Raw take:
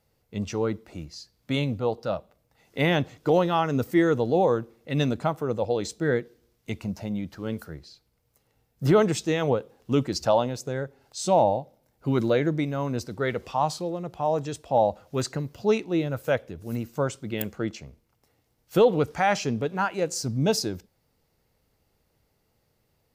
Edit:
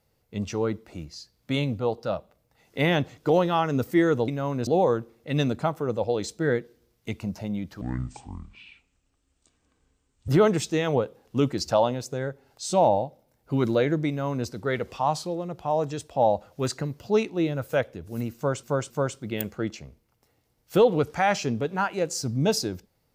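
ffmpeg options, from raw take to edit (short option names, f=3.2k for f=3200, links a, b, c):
-filter_complex "[0:a]asplit=7[a][b][c][d][e][f][g];[a]atrim=end=4.282[h];[b]atrim=start=12.628:end=13.022[i];[c]atrim=start=4.278:end=7.424[j];[d]atrim=start=7.42:end=8.83,asetpts=PTS-STARTPTS,asetrate=25137,aresample=44100,atrim=end_sample=109089,asetpts=PTS-STARTPTS[k];[e]atrim=start=8.826:end=17.182[l];[f]atrim=start=16.908:end=17.182[m];[g]atrim=start=16.908[n];[h][i]acrossfade=d=0.004:c1=hsin:c2=hsin[o];[o][j]acrossfade=d=0.004:c1=hsin:c2=hsin[p];[p][k]acrossfade=d=0.004:c1=hsin:c2=hsin[q];[q][l]acrossfade=d=0.004:c1=hsin:c2=hsin[r];[r][m]acrossfade=d=0.004:c1=hsin:c2=hsin[s];[s][n]acrossfade=d=0.004:c1=hsin:c2=hsin"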